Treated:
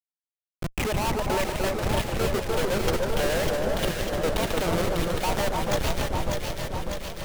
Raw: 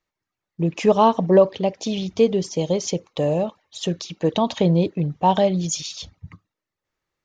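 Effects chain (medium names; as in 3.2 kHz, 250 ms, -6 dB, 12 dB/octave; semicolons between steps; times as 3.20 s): three-band isolator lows -20 dB, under 530 Hz, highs -23 dB, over 5 kHz; compression 5:1, threshold -23 dBFS, peak gain reduction 10 dB; Schmitt trigger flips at -29 dBFS; echo whose repeats swap between lows and highs 299 ms, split 1.5 kHz, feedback 82%, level -2 dB; modulated delay 149 ms, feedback 71%, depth 198 cents, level -9 dB; trim +6 dB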